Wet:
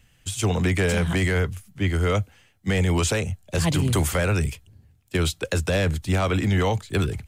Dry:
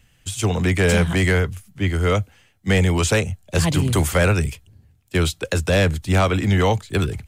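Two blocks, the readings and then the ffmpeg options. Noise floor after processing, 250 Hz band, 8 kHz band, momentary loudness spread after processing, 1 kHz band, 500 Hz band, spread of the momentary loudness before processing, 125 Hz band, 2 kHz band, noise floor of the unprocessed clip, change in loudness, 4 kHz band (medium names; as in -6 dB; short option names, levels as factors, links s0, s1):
-60 dBFS, -3.5 dB, -2.5 dB, 7 LU, -4.5 dB, -4.5 dB, 7 LU, -3.5 dB, -4.5 dB, -58 dBFS, -4.0 dB, -3.5 dB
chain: -af "alimiter=limit=0.266:level=0:latency=1:release=42,volume=0.841"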